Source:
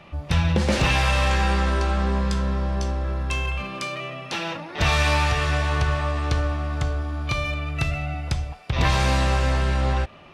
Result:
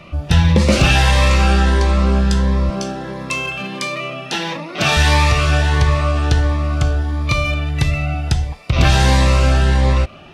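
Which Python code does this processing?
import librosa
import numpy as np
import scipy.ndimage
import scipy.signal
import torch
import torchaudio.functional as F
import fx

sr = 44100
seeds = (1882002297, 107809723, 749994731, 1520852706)

y = fx.highpass(x, sr, hz=140.0, slope=24, at=(2.7, 4.97))
y = fx.notch_cascade(y, sr, direction='rising', hz=1.5)
y = F.gain(torch.from_numpy(y), 8.5).numpy()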